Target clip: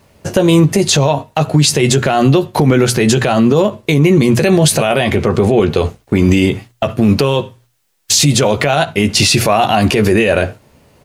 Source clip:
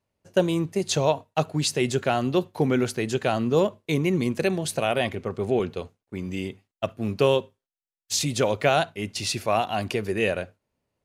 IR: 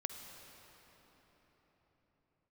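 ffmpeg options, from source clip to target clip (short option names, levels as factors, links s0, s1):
-filter_complex "[0:a]equalizer=f=120:w=1.4:g=3.5,bandreject=f=60:t=h:w=6,bandreject=f=120:t=h:w=6,asplit=2[s0][s1];[s1]adelay=14,volume=0.398[s2];[s0][s2]amix=inputs=2:normalize=0,acompressor=threshold=0.0251:ratio=12,alimiter=level_in=35.5:limit=0.891:release=50:level=0:latency=1,volume=0.891"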